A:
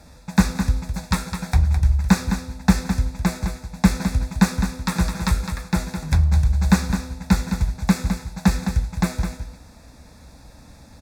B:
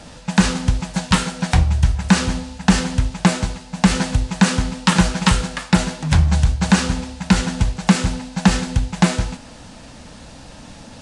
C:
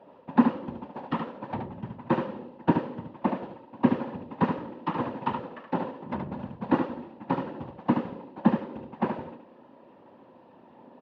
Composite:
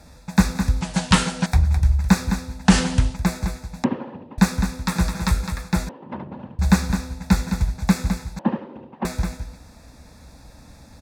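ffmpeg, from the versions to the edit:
-filter_complex "[1:a]asplit=2[s0][s1];[2:a]asplit=3[s2][s3][s4];[0:a]asplit=6[s5][s6][s7][s8][s9][s10];[s5]atrim=end=0.812[s11];[s0]atrim=start=0.808:end=1.462[s12];[s6]atrim=start=1.458:end=2.7[s13];[s1]atrim=start=2.64:end=3.17[s14];[s7]atrim=start=3.11:end=3.842[s15];[s2]atrim=start=3.838:end=4.382[s16];[s8]atrim=start=4.378:end=5.892[s17];[s3]atrim=start=5.888:end=6.592[s18];[s9]atrim=start=6.588:end=8.392[s19];[s4]atrim=start=8.388:end=9.052[s20];[s10]atrim=start=9.048[s21];[s11][s12]acrossfade=d=0.004:c1=hsin:c2=hsin[s22];[s22][s13]acrossfade=d=0.004:c1=hsin:c2=hsin[s23];[s23][s14]acrossfade=d=0.06:c1=tri:c2=tri[s24];[s24][s15]acrossfade=d=0.06:c1=tri:c2=tri[s25];[s25][s16]acrossfade=d=0.004:c1=hsin:c2=hsin[s26];[s26][s17]acrossfade=d=0.004:c1=hsin:c2=hsin[s27];[s27][s18]acrossfade=d=0.004:c1=hsin:c2=hsin[s28];[s28][s19]acrossfade=d=0.004:c1=hsin:c2=hsin[s29];[s29][s20]acrossfade=d=0.004:c1=hsin:c2=hsin[s30];[s30][s21]acrossfade=d=0.004:c1=hsin:c2=hsin"

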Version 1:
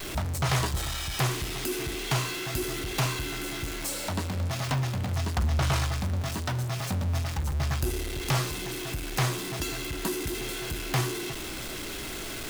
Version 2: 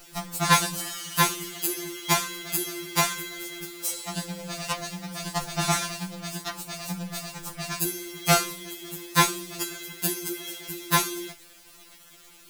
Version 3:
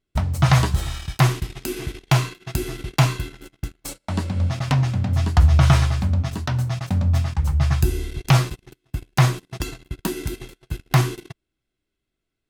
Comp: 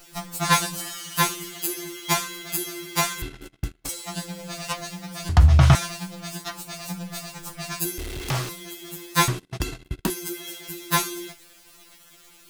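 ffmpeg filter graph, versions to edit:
-filter_complex "[2:a]asplit=3[s0][s1][s2];[1:a]asplit=5[s3][s4][s5][s6][s7];[s3]atrim=end=3.222[s8];[s0]atrim=start=3.218:end=3.892[s9];[s4]atrim=start=3.888:end=5.292[s10];[s1]atrim=start=5.288:end=5.752[s11];[s5]atrim=start=5.748:end=7.982[s12];[0:a]atrim=start=7.978:end=8.492[s13];[s6]atrim=start=8.488:end=9.282[s14];[s2]atrim=start=9.278:end=10.102[s15];[s7]atrim=start=10.098[s16];[s8][s9]acrossfade=d=0.004:c1=hsin:c2=hsin[s17];[s17][s10]acrossfade=d=0.004:c1=hsin:c2=hsin[s18];[s18][s11]acrossfade=d=0.004:c1=hsin:c2=hsin[s19];[s19][s12]acrossfade=d=0.004:c1=hsin:c2=hsin[s20];[s20][s13]acrossfade=d=0.004:c1=hsin:c2=hsin[s21];[s21][s14]acrossfade=d=0.004:c1=hsin:c2=hsin[s22];[s22][s15]acrossfade=d=0.004:c1=hsin:c2=hsin[s23];[s23][s16]acrossfade=d=0.004:c1=hsin:c2=hsin"

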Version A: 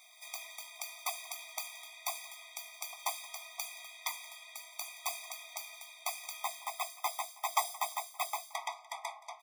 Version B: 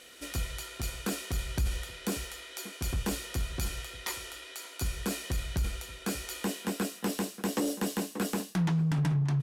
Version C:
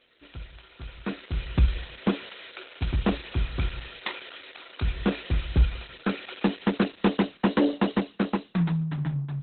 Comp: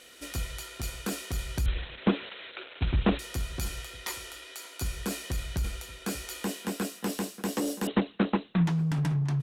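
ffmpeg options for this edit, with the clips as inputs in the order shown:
-filter_complex "[2:a]asplit=2[s0][s1];[1:a]asplit=3[s2][s3][s4];[s2]atrim=end=1.662[s5];[s0]atrim=start=1.658:end=3.192[s6];[s3]atrim=start=3.188:end=7.872[s7];[s1]atrim=start=7.868:end=8.662[s8];[s4]atrim=start=8.658[s9];[s5][s6]acrossfade=d=0.004:c1=hsin:c2=hsin[s10];[s10][s7]acrossfade=d=0.004:c1=hsin:c2=hsin[s11];[s11][s8]acrossfade=d=0.004:c1=hsin:c2=hsin[s12];[s12][s9]acrossfade=d=0.004:c1=hsin:c2=hsin"

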